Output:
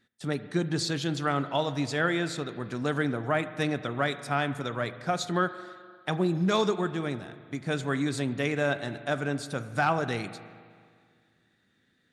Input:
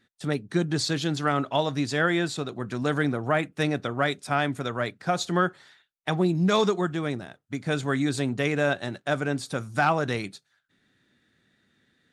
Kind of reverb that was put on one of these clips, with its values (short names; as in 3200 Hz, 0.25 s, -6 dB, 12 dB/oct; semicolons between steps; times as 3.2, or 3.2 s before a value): spring tank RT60 2 s, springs 36/42 ms, chirp 40 ms, DRR 12 dB; gain -3 dB